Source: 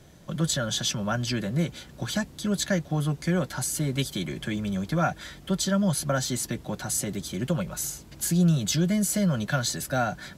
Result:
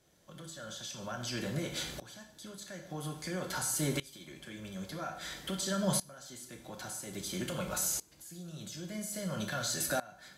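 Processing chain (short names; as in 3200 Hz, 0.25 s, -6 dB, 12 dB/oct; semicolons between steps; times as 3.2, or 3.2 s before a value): tone controls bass -8 dB, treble +4 dB; compressor, threshold -32 dBFS, peak gain reduction 11.5 dB; limiter -27.5 dBFS, peak gain reduction 8 dB; reverb RT60 0.65 s, pre-delay 7 ms, DRR 3.5 dB; dB-ramp tremolo swelling 0.5 Hz, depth 21 dB; gain +5.5 dB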